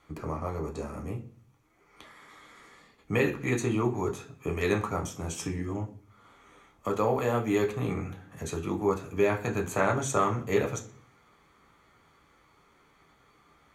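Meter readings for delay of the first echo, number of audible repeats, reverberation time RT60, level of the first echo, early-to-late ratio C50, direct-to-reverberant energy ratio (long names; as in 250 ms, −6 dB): no echo audible, no echo audible, 0.45 s, no echo audible, 13.0 dB, 1.5 dB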